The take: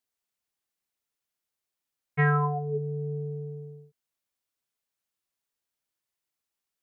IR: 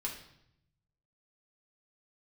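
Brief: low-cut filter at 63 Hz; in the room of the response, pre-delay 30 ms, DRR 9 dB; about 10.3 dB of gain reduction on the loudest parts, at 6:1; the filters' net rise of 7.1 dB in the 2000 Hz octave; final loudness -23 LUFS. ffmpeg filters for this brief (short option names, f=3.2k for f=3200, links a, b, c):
-filter_complex "[0:a]highpass=63,equalizer=f=2k:t=o:g=8.5,acompressor=threshold=-26dB:ratio=6,asplit=2[a][b];[1:a]atrim=start_sample=2205,adelay=30[c];[b][c]afir=irnorm=-1:irlink=0,volume=-10dB[d];[a][d]amix=inputs=2:normalize=0,volume=10dB"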